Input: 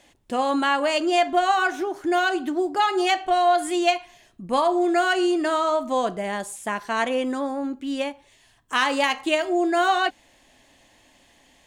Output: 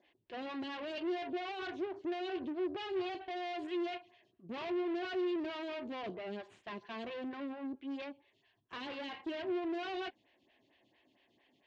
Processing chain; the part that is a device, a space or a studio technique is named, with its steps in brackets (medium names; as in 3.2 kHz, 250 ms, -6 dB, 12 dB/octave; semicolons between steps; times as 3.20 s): vibe pedal into a guitar amplifier (lamp-driven phase shifter 4.4 Hz; valve stage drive 32 dB, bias 0.75; cabinet simulation 96–4200 Hz, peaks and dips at 110 Hz +6 dB, 370 Hz +7 dB, 530 Hz -4 dB, 850 Hz -5 dB, 1.3 kHz -8 dB, 2.8 kHz +3 dB); trim -5.5 dB